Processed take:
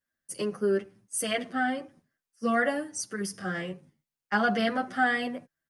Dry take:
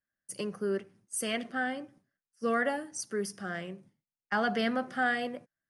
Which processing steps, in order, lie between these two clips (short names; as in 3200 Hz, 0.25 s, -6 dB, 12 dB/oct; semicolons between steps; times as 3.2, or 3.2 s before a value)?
3.31–3.72 doubler 27 ms -6 dB; endless flanger 8.9 ms -0.56 Hz; gain +6.5 dB